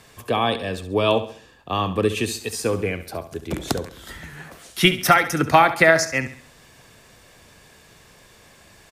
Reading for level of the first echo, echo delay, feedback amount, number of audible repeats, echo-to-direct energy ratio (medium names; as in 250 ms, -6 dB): -12.5 dB, 68 ms, 40%, 3, -11.5 dB